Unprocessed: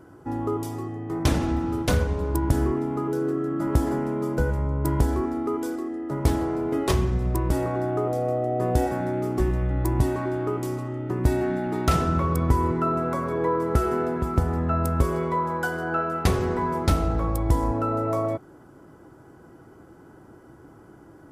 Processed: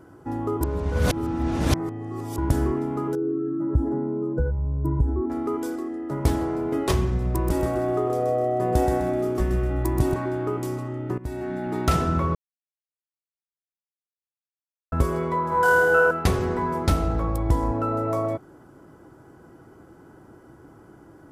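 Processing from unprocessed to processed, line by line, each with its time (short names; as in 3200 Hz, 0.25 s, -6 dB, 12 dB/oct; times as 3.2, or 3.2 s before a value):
0.61–2.38 reverse
3.15–5.3 spectral contrast raised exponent 1.7
7.26–10.14 feedback echo 0.127 s, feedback 36%, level -5.5 dB
11.18–11.77 fade in, from -17 dB
12.35–14.92 mute
15.49–16.11 flutter echo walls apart 4.5 m, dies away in 1.4 s
17.22–17.83 high shelf 5900 Hz -5.5 dB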